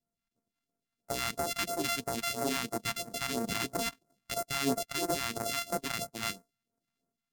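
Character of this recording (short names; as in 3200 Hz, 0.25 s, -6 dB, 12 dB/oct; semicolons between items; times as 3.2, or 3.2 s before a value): a buzz of ramps at a fixed pitch in blocks of 64 samples; phasing stages 2, 3 Hz, lowest notch 400–3000 Hz; Vorbis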